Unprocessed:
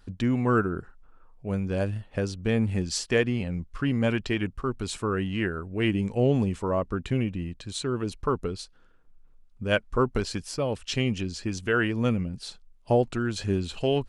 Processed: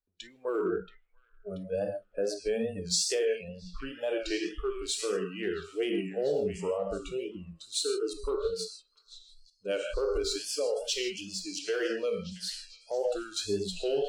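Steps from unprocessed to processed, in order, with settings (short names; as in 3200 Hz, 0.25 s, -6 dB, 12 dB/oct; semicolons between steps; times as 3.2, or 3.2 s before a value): G.711 law mismatch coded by mu; non-linear reverb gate 0.18 s flat, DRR 3.5 dB; spectral noise reduction 25 dB; in parallel at -11.5 dB: one-sided clip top -20.5 dBFS; on the sum: ten-band EQ 125 Hz -9 dB, 500 Hz +10 dB, 4000 Hz +4 dB, 8000 Hz +4 dB; limiter -12.5 dBFS, peak gain reduction 10 dB; dynamic EQ 1100 Hz, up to -6 dB, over -37 dBFS, Q 0.82; on a send: delay with a stepping band-pass 0.682 s, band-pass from 2600 Hz, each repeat 0.7 oct, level -9 dB; on the sum: wow and flutter 76 cents; three-band expander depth 40%; gain -7.5 dB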